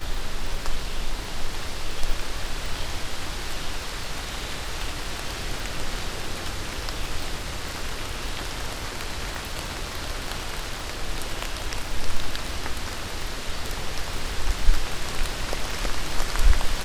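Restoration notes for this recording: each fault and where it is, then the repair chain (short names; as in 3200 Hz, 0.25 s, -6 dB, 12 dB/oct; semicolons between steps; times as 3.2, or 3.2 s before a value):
crackle 32/s -29 dBFS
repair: de-click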